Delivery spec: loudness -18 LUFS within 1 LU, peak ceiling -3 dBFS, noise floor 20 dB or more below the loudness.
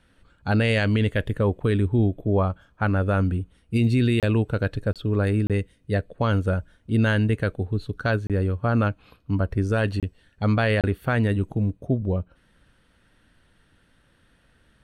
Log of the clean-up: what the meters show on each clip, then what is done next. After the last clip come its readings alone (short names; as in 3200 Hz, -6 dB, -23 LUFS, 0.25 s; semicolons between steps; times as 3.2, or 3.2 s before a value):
dropouts 6; longest dropout 27 ms; loudness -24.0 LUFS; peak -12.0 dBFS; loudness target -18.0 LUFS
-> interpolate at 4.2/4.93/5.47/8.27/10/10.81, 27 ms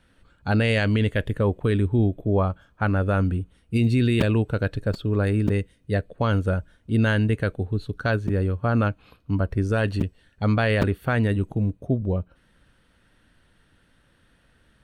dropouts 0; loudness -24.0 LUFS; peak -5.5 dBFS; loudness target -18.0 LUFS
-> gain +6 dB; limiter -3 dBFS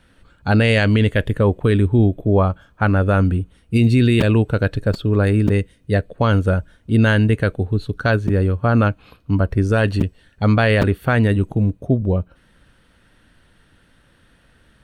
loudness -18.0 LUFS; peak -3.0 dBFS; noise floor -56 dBFS